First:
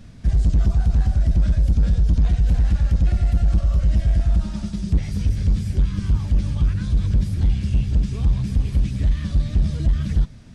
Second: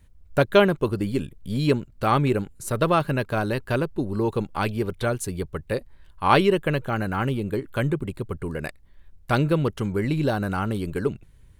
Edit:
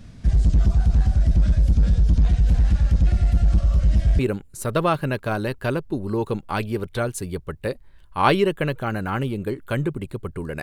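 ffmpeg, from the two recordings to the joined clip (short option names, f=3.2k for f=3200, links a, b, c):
-filter_complex "[0:a]apad=whole_dur=10.62,atrim=end=10.62,atrim=end=4.192[a];[1:a]atrim=start=2.248:end=8.68[b];[a][b]acrossfade=d=0.004:c1=hsin:c2=hsin"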